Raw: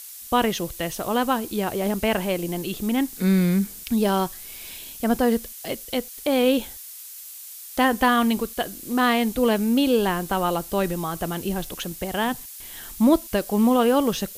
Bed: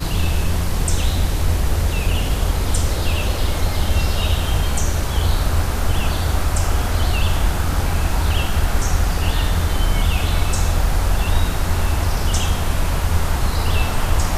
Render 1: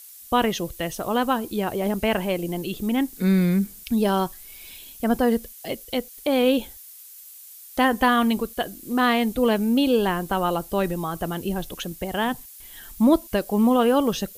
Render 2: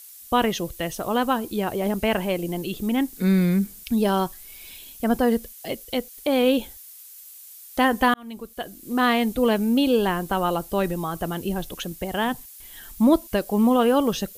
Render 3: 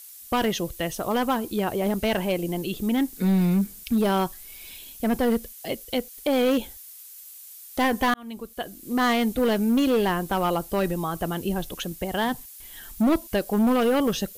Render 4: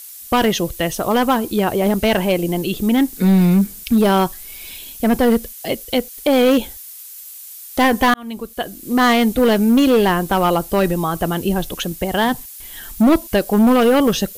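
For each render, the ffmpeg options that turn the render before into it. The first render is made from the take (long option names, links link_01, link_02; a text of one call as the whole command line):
ffmpeg -i in.wav -af "afftdn=noise_reduction=7:noise_floor=-40" out.wav
ffmpeg -i in.wav -filter_complex "[0:a]asplit=2[link_01][link_02];[link_01]atrim=end=8.14,asetpts=PTS-STARTPTS,afade=type=out:start_time=8.136:duration=0.004:curve=hsin[link_03];[link_02]atrim=start=8.14,asetpts=PTS-STARTPTS,afade=type=in:duration=0.9[link_04];[link_03][link_04]concat=n=2:v=0:a=1" out.wav
ffmpeg -i in.wav -af "volume=17dB,asoftclip=hard,volume=-17dB" out.wav
ffmpeg -i in.wav -af "volume=8dB" out.wav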